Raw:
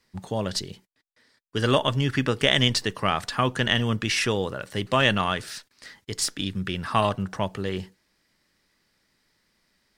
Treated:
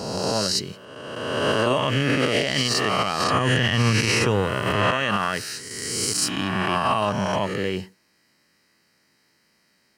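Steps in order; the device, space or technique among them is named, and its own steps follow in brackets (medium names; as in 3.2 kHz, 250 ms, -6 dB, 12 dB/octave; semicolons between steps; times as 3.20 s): reverse spectral sustain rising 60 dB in 1.69 s; PA system with an anti-feedback notch (high-pass 110 Hz 12 dB/octave; Butterworth band-stop 3.5 kHz, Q 6.7; peak limiter -13 dBFS, peak gain reduction 11 dB); 3.33–4.91 s: peaking EQ 94 Hz +10.5 dB 1.2 oct; trim +2 dB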